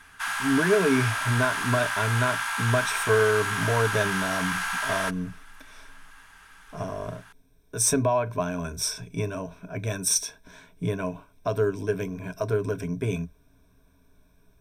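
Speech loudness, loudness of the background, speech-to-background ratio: -27.0 LUFS, -27.5 LUFS, 0.5 dB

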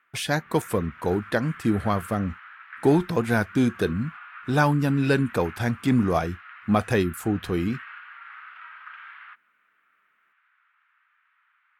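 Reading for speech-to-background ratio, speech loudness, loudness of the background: 18.0 dB, -25.0 LUFS, -43.0 LUFS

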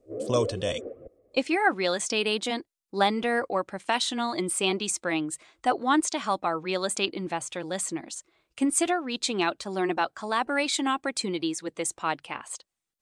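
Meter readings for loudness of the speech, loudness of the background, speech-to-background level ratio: -28.0 LUFS, -35.5 LUFS, 7.5 dB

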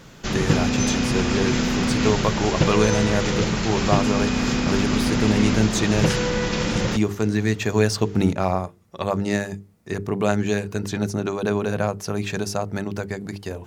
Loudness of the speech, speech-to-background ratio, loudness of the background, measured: -24.5 LUFS, -2.0 dB, -22.5 LUFS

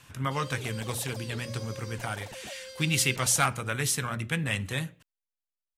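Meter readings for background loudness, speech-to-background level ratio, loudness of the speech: -43.5 LUFS, 14.0 dB, -29.5 LUFS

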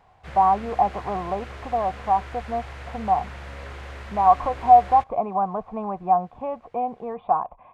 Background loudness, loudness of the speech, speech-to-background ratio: -39.0 LUFS, -23.0 LUFS, 16.0 dB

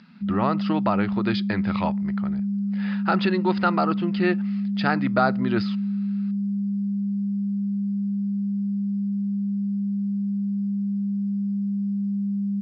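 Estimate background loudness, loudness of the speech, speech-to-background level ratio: -26.5 LUFS, -25.5 LUFS, 1.0 dB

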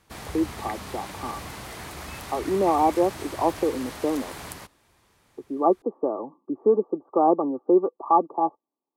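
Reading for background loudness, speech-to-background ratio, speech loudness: -37.5 LUFS, 13.0 dB, -24.5 LUFS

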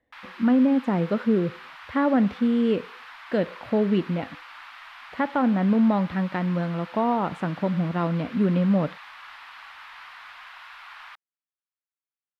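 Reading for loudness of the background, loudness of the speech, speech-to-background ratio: -42.5 LUFS, -24.0 LUFS, 18.5 dB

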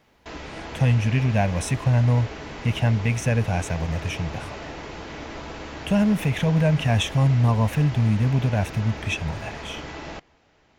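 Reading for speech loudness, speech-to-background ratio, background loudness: -22.5 LUFS, 14.0 dB, -36.5 LUFS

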